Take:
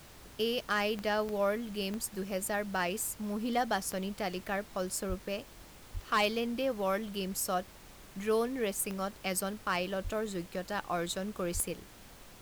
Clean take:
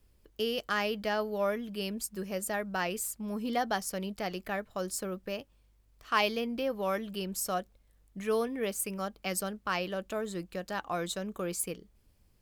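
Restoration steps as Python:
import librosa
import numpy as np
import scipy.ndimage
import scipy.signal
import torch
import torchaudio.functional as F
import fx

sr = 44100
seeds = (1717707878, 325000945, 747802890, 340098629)

y = fx.fix_declip(x, sr, threshold_db=-21.0)
y = fx.fix_declick_ar(y, sr, threshold=10.0)
y = fx.fix_deplosive(y, sr, at_s=(5.08, 5.93, 10.03, 11.53))
y = fx.noise_reduce(y, sr, print_start_s=11.89, print_end_s=12.39, reduce_db=11.0)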